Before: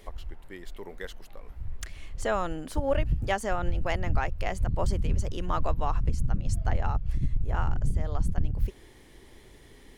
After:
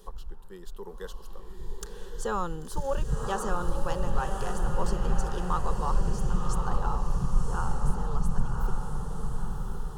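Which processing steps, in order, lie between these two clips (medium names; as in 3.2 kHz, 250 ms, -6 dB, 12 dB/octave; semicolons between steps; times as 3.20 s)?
static phaser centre 430 Hz, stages 8; echo that smears into a reverb 1068 ms, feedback 50%, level -3.5 dB; trim +1.5 dB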